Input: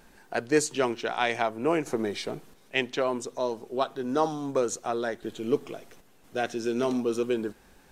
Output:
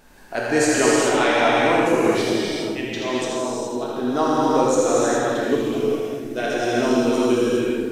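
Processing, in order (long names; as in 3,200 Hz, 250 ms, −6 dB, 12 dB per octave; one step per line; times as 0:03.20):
0:02.32–0:04.01: volume swells 160 ms
echo with a time of its own for lows and highs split 380 Hz, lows 609 ms, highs 81 ms, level −6 dB
reverb whose tail is shaped and stops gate 450 ms flat, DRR −6.5 dB
level +2 dB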